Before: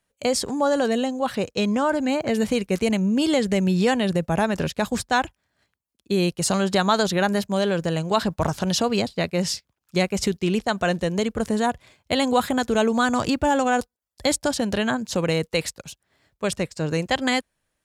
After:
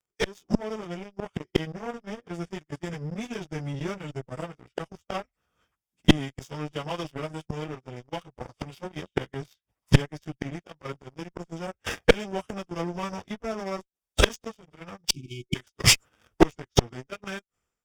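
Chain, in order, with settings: frequency-domain pitch shifter -4.5 st; inverted gate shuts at -23 dBFS, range -36 dB; waveshaping leveller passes 3; Butterworth band-stop 4.1 kHz, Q 7; gate -52 dBFS, range -11 dB; spectral selection erased 15.09–15.55 s, 370–2200 Hz; Chebyshev shaper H 2 -7 dB, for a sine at -20 dBFS; level rider gain up to 13.5 dB; trim +3 dB

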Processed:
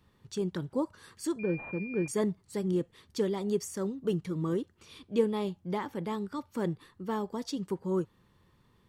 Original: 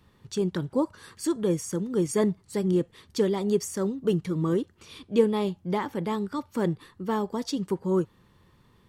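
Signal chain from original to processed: 1.39–2.08 s: class-D stage that switches slowly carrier 2.4 kHz; trim -5.5 dB

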